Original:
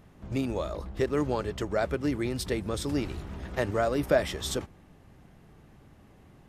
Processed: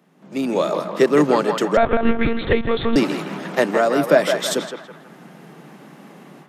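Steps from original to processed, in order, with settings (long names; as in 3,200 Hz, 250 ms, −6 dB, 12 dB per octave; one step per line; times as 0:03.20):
Butterworth high-pass 150 Hz 72 dB per octave
automatic gain control gain up to 16 dB
feedback echo with a band-pass in the loop 163 ms, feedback 54%, band-pass 1,200 Hz, level −4 dB
0:01.77–0:02.96: one-pitch LPC vocoder at 8 kHz 230 Hz
level −1 dB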